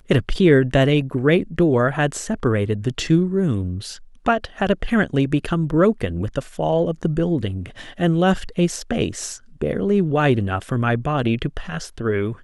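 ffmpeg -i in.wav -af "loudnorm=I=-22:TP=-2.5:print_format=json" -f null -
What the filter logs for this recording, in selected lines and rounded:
"input_i" : "-20.6",
"input_tp" : "-2.9",
"input_lra" : "1.6",
"input_thresh" : "-30.8",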